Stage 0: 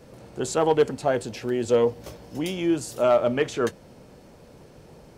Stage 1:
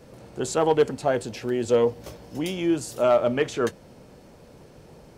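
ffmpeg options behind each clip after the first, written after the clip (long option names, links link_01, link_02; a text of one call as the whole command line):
ffmpeg -i in.wav -af anull out.wav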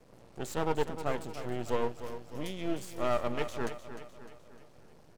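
ffmpeg -i in.wav -filter_complex "[0:a]aeval=exprs='max(val(0),0)':channel_layout=same,asplit=2[link_01][link_02];[link_02]aecho=0:1:303|606|909|1212|1515:0.282|0.138|0.0677|0.0332|0.0162[link_03];[link_01][link_03]amix=inputs=2:normalize=0,volume=-7dB" out.wav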